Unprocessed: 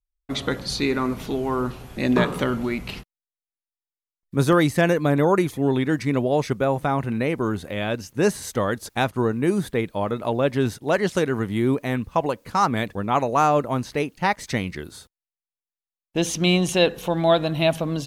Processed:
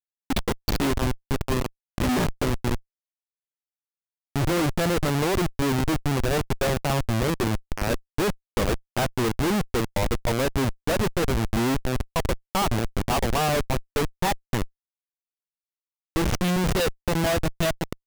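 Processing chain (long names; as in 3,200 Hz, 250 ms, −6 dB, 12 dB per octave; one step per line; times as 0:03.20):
transient designer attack +5 dB, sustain +1 dB
noise that follows the level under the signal 29 dB
noise reduction from a noise print of the clip's start 24 dB
comparator with hysteresis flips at −21 dBFS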